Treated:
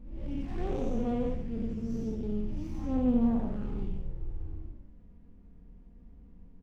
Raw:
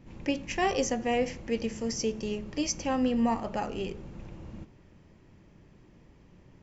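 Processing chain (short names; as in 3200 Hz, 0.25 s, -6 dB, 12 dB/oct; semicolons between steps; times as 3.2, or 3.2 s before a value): time blur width 0.208 s; envelope flanger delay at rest 4.9 ms, full sweep at -28.5 dBFS; tilt -4 dB/oct; echo 91 ms -5 dB; running maximum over 9 samples; gain -6.5 dB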